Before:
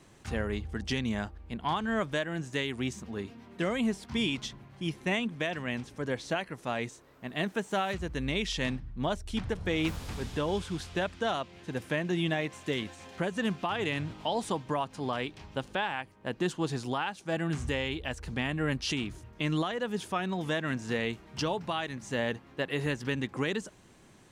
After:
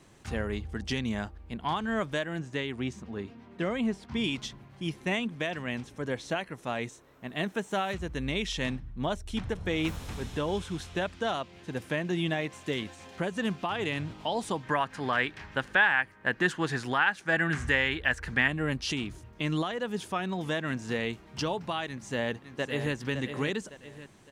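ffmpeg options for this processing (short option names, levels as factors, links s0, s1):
-filter_complex "[0:a]asettb=1/sr,asplit=3[s0][s1][s2];[s0]atrim=end=2.394[s3];[s1]atrim=start=2.39:end=4.24,asetpts=PTS-STARTPTS,afade=t=in:d=0.004:c=qsin,afade=t=out:st=1.846:d=0.004:c=qsin,lowpass=f=3200:p=1[s4];[s2]atrim=start=4.236[s5];[s3][s4]acrossfade=d=0.004:c1=hsin:c2=qsin[s6];[s6][s5]acrossfade=d=0.004:c1=qsin:c2=hsin,asettb=1/sr,asplit=3[s7][s8][s9];[s7]atrim=end=5.844[s10];[s8]atrim=start=5.84:end=11.06,asetpts=PTS-STARTPTS,afade=t=in:d=0.004:c=qsin,afade=t=out:st=5.216:d=0.004:c=qsin,bandreject=f=4700:w=12[s11];[s9]atrim=start=11.056[s12];[s10][s11]acrossfade=d=0.004:c1=hsin:c2=qsin[s13];[s13][s12]acrossfade=d=0.004:c1=qsin:c2=hsin,asettb=1/sr,asplit=3[s14][s15][s16];[s14]atrim=end=14.634[s17];[s15]atrim=start=14.63:end=18.48,asetpts=PTS-STARTPTS,afade=t=in:d=0.004:c=qsin,afade=t=out:st=3.846:d=0.004:c=qsin,equalizer=f=1700:w=1.6:g=15[s18];[s16]atrim=start=18.476[s19];[s17][s18]acrossfade=d=0.004:c1=hsin:c2=qsin[s20];[s20][s19]acrossfade=d=0.004:c1=qsin:c2=hsin,asplit=2[s21][s22];[s22]afade=t=in:st=21.86:d=0.01,afade=t=out:st=22.94:d=0.01,aecho=0:1:560|1120|1680|2240:0.375837|0.150335|0.060134|0.0240536[s23];[s21][s23]amix=inputs=2:normalize=0"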